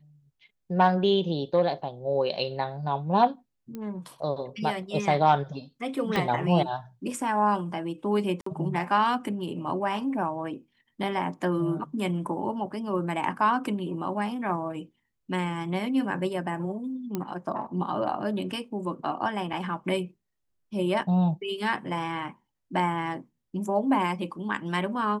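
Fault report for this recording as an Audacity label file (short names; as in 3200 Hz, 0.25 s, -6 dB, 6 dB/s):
3.750000	3.750000	pop -24 dBFS
6.160000	6.160000	pop -14 dBFS
8.410000	8.460000	gap 54 ms
17.150000	17.150000	pop -16 dBFS
19.530000	19.530000	gap 3.1 ms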